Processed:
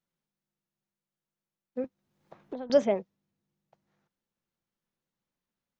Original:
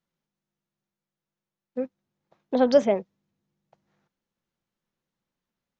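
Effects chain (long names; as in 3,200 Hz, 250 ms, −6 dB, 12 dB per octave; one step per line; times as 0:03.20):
0:01.84–0:02.70: multiband upward and downward compressor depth 100%
level −4 dB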